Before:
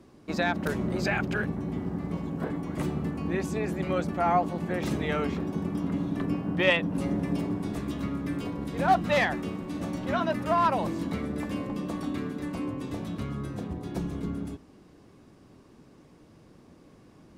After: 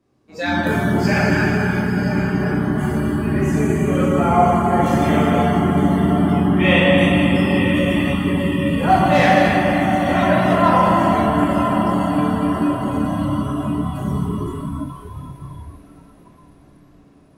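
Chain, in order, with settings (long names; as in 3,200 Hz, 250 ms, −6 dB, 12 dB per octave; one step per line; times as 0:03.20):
feedback delay with all-pass diffusion 1,017 ms, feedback 56%, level −7 dB
dense smooth reverb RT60 4.1 s, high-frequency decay 0.95×, DRR −9 dB
noise reduction from a noise print of the clip's start 16 dB
level +1.5 dB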